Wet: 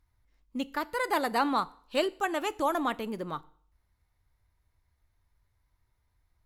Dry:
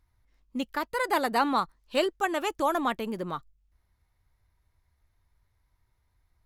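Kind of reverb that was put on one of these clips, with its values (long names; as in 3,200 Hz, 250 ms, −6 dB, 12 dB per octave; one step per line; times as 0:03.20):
feedback delay network reverb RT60 0.56 s, low-frequency decay 0.9×, high-frequency decay 0.95×, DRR 16.5 dB
level −2 dB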